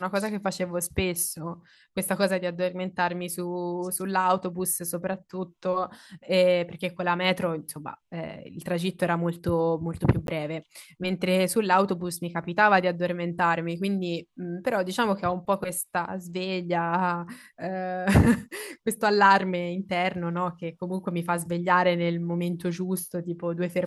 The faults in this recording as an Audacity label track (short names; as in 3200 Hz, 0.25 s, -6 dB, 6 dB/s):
10.270000	10.280000	gap 12 ms